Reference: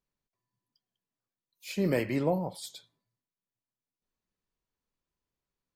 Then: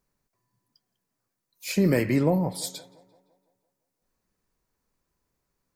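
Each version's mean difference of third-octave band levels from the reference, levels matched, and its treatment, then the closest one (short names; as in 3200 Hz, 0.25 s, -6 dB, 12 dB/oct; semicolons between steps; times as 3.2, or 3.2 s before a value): 3.5 dB: tape echo 0.171 s, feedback 55%, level -24 dB, low-pass 4100 Hz; dynamic EQ 710 Hz, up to -6 dB, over -41 dBFS, Q 0.85; in parallel at +1.5 dB: compressor, threshold -33 dBFS, peak gain reduction 8 dB; on the sum: bell 3200 Hz -8 dB 0.73 oct; gain +4.5 dB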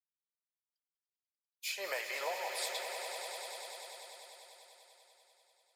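18.5 dB: expander -55 dBFS; inverse Chebyshev high-pass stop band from 260 Hz, stop band 50 dB; compressor, threshold -44 dBFS, peak gain reduction 13 dB; on a send: swelling echo 98 ms, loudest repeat 5, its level -10 dB; on the sum: gain +8 dB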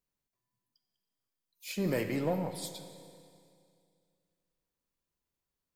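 7.0 dB: high shelf 7900 Hz +6.5 dB; in parallel at -4.5 dB: overloaded stage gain 30.5 dB; on the sum: darkening echo 0.186 s, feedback 56%, low-pass 4300 Hz, level -20.5 dB; Schroeder reverb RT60 2.3 s, combs from 31 ms, DRR 10 dB; gain -6 dB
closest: first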